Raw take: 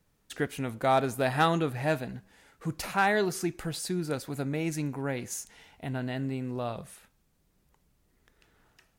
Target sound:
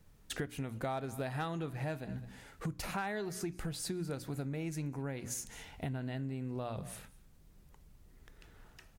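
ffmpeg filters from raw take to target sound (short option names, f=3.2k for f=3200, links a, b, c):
-filter_complex "[0:a]lowshelf=f=140:g=10.5,bandreject=f=60:t=h:w=6,bandreject=f=120:t=h:w=6,bandreject=f=180:t=h:w=6,bandreject=f=240:t=h:w=6,bandreject=f=300:t=h:w=6,asplit=2[a][b];[b]aecho=0:1:207:0.0708[c];[a][c]amix=inputs=2:normalize=0,acompressor=threshold=-39dB:ratio=6,volume=3dB"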